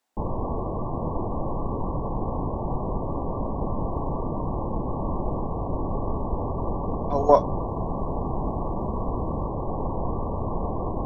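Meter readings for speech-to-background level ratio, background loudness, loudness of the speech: 8.5 dB, -30.0 LUFS, -21.5 LUFS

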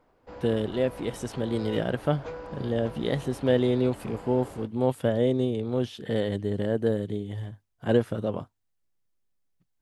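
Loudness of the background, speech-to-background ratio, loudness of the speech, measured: -42.5 LUFS, 14.5 dB, -28.0 LUFS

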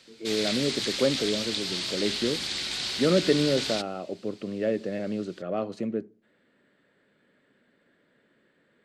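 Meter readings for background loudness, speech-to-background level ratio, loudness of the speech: -29.5 LUFS, 0.5 dB, -29.0 LUFS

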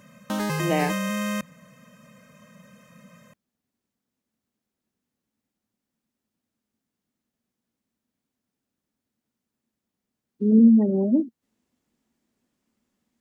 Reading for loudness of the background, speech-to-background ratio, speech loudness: -27.5 LUFS, 7.5 dB, -20.0 LUFS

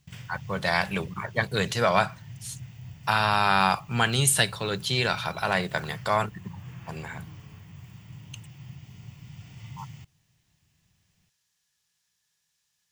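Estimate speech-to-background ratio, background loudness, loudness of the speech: 19.5 dB, -45.0 LUFS, -25.5 LUFS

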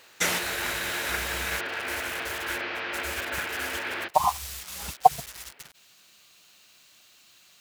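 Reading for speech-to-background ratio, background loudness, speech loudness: 1.5 dB, -31.5 LUFS, -30.0 LUFS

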